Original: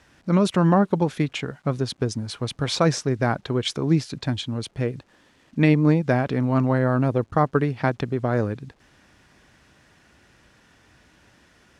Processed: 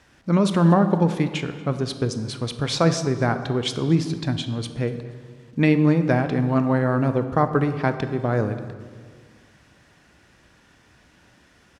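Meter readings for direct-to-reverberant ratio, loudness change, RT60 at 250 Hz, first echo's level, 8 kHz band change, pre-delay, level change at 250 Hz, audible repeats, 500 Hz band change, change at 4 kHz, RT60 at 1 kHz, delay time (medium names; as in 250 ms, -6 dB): 9.0 dB, +1.0 dB, 2.1 s, -22.0 dB, +0.5 dB, 19 ms, +1.0 dB, 1, +0.5 dB, +0.5 dB, 1.7 s, 238 ms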